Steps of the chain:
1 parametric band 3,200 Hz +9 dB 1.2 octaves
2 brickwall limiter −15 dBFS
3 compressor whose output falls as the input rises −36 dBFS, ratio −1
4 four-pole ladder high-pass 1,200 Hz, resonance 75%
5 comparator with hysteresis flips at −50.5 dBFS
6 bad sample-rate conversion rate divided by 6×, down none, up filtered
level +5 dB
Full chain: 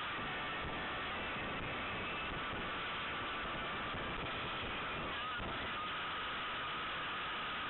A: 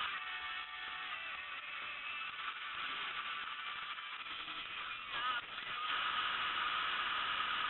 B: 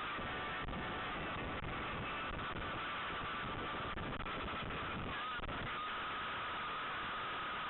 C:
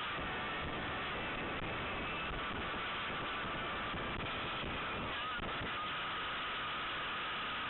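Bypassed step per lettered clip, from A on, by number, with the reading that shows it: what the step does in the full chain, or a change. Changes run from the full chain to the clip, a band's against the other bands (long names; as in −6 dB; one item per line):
5, change in crest factor +8.5 dB
1, 4 kHz band −3.5 dB
2, average gain reduction 2.0 dB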